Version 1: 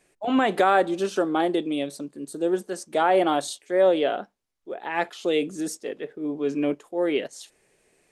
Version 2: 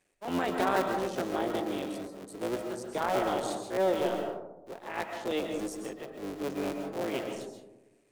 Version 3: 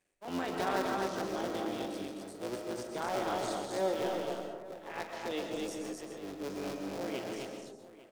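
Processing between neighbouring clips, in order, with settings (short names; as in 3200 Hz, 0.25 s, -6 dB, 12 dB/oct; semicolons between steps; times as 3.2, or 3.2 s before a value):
cycle switcher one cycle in 3, muted; on a send at -4 dB: reverb RT60 1.0 s, pre-delay 95 ms; on the sum: gain -8 dB
on a send: tapped delay 42/258/851 ms -11/-3/-17 dB; on the sum: dynamic EQ 5200 Hz, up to +6 dB, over -58 dBFS, Q 1.6; gain -6 dB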